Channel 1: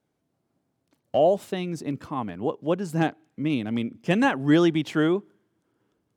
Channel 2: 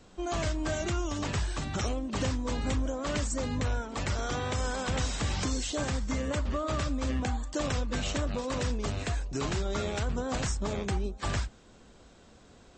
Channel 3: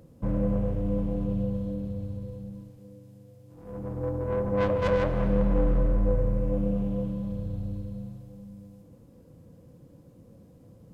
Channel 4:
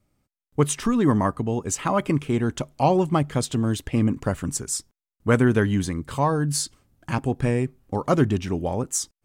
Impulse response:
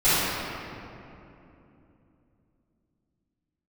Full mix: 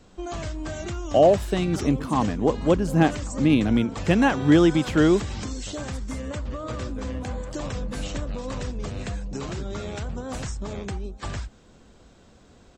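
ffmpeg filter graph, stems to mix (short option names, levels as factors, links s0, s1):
-filter_complex "[0:a]dynaudnorm=f=110:g=7:m=5.01,volume=0.473[s0];[1:a]volume=1.06[s1];[2:a]adelay=2450,volume=0.168[s2];[3:a]adelay=1400,volume=0.112[s3];[s1][s3]amix=inputs=2:normalize=0,acompressor=threshold=0.0316:ratio=6,volume=1[s4];[s0][s2][s4]amix=inputs=3:normalize=0,lowshelf=f=420:g=3"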